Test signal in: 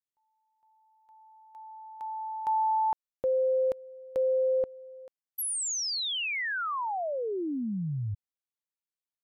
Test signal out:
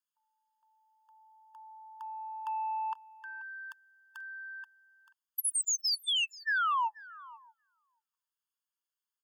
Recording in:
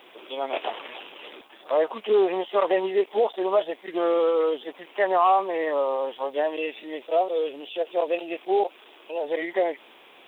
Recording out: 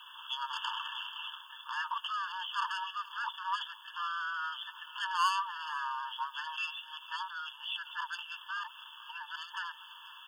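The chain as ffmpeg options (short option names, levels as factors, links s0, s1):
-af "asoftclip=type=tanh:threshold=0.0531,aecho=1:1:485:0.0944,afftfilt=real='re*eq(mod(floor(b*sr/1024/890),2),1)':imag='im*eq(mod(floor(b*sr/1024/890),2),1)':win_size=1024:overlap=0.75,volume=1.58"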